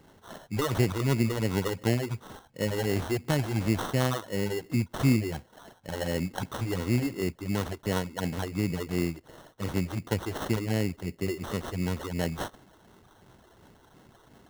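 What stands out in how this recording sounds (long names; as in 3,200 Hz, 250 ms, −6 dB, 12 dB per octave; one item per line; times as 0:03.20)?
phaser sweep stages 6, 2.8 Hz, lowest notch 160–4,900 Hz
aliases and images of a low sample rate 2,400 Hz, jitter 0%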